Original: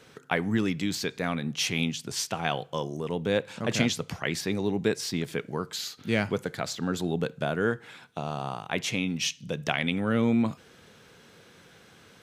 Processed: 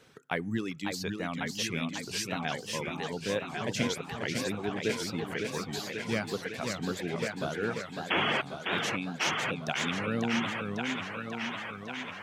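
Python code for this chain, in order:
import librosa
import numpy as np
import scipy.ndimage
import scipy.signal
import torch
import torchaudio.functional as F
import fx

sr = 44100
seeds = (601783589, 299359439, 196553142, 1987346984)

y = fx.spec_paint(x, sr, seeds[0], shape='noise', start_s=8.1, length_s=0.32, low_hz=200.0, high_hz=3400.0, level_db=-22.0)
y = fx.echo_wet_bandpass(y, sr, ms=1099, feedback_pct=64, hz=1500.0, wet_db=-3.0)
y = fx.dereverb_blind(y, sr, rt60_s=1.1)
y = fx.echo_warbled(y, sr, ms=546, feedback_pct=63, rate_hz=2.8, cents=212, wet_db=-5.0)
y = F.gain(torch.from_numpy(y), -5.0).numpy()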